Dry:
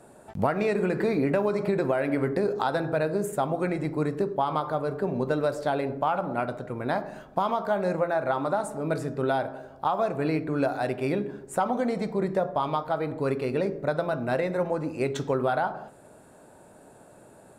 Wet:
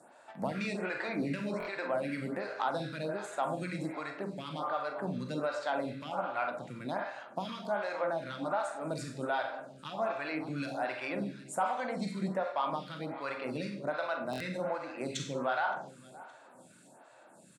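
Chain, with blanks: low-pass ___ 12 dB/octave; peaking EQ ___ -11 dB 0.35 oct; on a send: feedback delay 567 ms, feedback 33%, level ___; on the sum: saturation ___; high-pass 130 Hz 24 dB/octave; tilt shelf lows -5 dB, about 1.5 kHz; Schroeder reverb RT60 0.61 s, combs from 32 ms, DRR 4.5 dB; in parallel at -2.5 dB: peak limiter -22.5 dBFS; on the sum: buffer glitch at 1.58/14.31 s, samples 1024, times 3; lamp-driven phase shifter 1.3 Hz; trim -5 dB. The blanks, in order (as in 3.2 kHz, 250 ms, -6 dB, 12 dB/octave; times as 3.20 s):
7.1 kHz, 420 Hz, -19 dB, -14 dBFS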